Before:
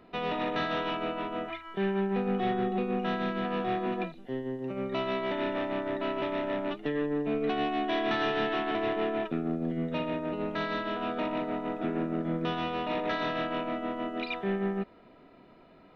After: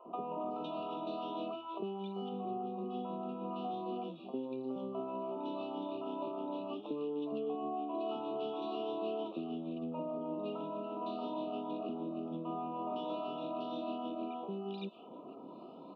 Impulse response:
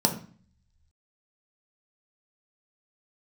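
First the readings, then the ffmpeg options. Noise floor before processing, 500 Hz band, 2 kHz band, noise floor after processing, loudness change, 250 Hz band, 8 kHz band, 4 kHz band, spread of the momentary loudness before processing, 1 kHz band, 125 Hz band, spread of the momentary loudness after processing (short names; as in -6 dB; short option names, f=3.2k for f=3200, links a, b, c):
-56 dBFS, -7.5 dB, -24.5 dB, -50 dBFS, -8.5 dB, -8.0 dB, n/a, -12.0 dB, 5 LU, -7.0 dB, -12.5 dB, 3 LU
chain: -filter_complex "[0:a]afftfilt=real='re*pow(10,7/40*sin(2*PI*(1.3*log(max(b,1)*sr/1024/100)/log(2)-(2.9)*(pts-256)/sr)))':imag='im*pow(10,7/40*sin(2*PI*(1.3*log(max(b,1)*sr/1024/100)/log(2)-(2.9)*(pts-256)/sr)))':win_size=1024:overlap=0.75,highpass=130,highshelf=f=3.5k:g=-11,acompressor=threshold=-42dB:ratio=16,asuperstop=centerf=1800:order=12:qfactor=1.3,acrossover=split=190 4800:gain=0.158 1 0.224[a][b][c];[a][b][c]amix=inputs=3:normalize=0,acrossover=split=560|2100[d][e][f];[d]adelay=50[g];[f]adelay=510[h];[g][e][h]amix=inputs=3:normalize=0,volume=9dB"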